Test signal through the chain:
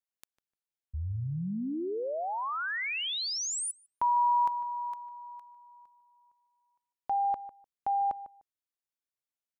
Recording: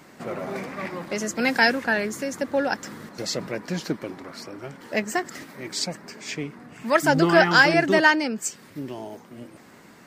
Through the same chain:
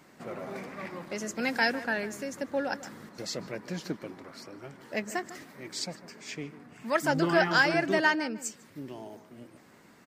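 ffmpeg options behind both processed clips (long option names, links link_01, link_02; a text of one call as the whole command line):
ffmpeg -i in.wav -filter_complex "[0:a]asplit=2[link_01][link_02];[link_02]adelay=150,lowpass=frequency=1800:poles=1,volume=-14dB,asplit=2[link_03][link_04];[link_04]adelay=150,lowpass=frequency=1800:poles=1,volume=0.18[link_05];[link_01][link_03][link_05]amix=inputs=3:normalize=0,volume=-7.5dB" out.wav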